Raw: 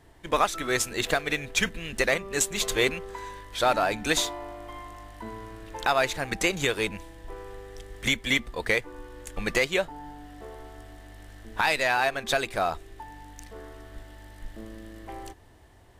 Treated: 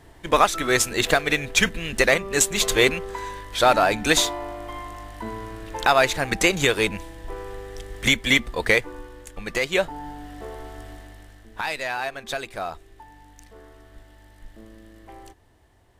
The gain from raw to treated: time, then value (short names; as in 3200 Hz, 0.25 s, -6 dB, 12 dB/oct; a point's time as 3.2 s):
8.87 s +6 dB
9.45 s -4 dB
9.85 s +6 dB
10.93 s +6 dB
11.49 s -4 dB